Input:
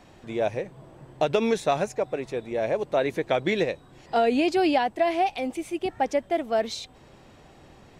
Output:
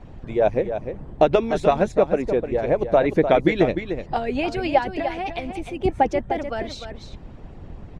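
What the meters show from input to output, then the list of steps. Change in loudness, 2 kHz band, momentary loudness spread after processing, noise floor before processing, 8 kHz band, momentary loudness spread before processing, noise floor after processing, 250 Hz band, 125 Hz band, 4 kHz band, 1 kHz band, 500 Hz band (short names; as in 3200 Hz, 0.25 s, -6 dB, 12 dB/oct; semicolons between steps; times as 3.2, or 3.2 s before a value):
+4.0 dB, +2.0 dB, 14 LU, -53 dBFS, n/a, 10 LU, -41 dBFS, +3.5 dB, +9.0 dB, -1.5 dB, +3.0 dB, +4.5 dB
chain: harmonic-percussive split harmonic -16 dB; RIAA curve playback; echo 0.301 s -9 dB; gain +6.5 dB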